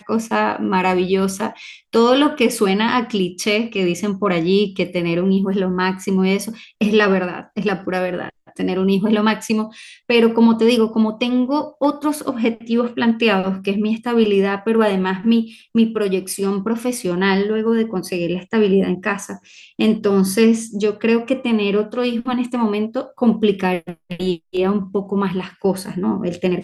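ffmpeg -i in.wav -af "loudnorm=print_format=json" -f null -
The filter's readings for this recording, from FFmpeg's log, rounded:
"input_i" : "-18.9",
"input_tp" : "-2.1",
"input_lra" : "3.3",
"input_thresh" : "-29.0",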